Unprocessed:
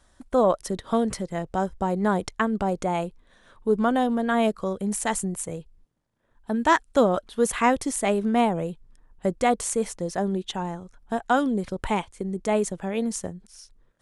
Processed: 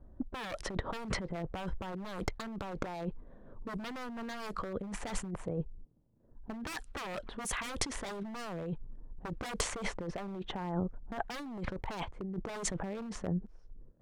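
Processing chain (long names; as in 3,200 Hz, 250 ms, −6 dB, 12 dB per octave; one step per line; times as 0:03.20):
low-pass that shuts in the quiet parts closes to 380 Hz, open at −16.5 dBFS
wave folding −22.5 dBFS
compressor whose output falls as the input rises −38 dBFS, ratio −1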